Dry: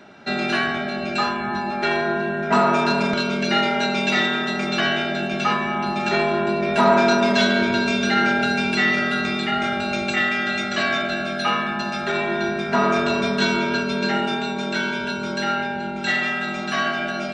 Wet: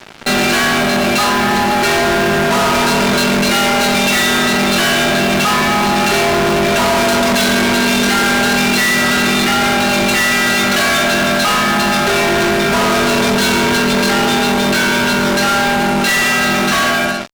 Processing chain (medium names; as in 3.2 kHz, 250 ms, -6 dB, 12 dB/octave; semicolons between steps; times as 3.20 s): fade out at the end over 0.60 s; fuzz box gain 36 dB, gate -42 dBFS; trim +1 dB